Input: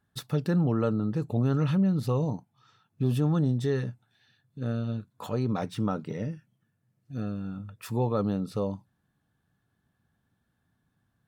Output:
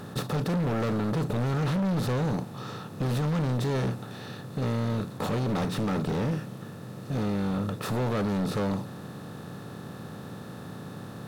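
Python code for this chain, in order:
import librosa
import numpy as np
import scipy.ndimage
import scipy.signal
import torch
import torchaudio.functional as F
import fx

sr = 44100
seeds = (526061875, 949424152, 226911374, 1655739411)

y = fx.bin_compress(x, sr, power=0.4)
y = np.clip(y, -10.0 ** (-24.5 / 20.0), 10.0 ** (-24.5 / 20.0))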